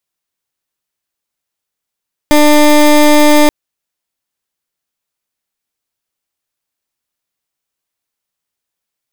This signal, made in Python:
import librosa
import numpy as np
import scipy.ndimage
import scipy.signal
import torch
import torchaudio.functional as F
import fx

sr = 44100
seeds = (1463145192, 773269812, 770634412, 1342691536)

y = fx.pulse(sr, length_s=1.18, hz=298.0, level_db=-6.0, duty_pct=21)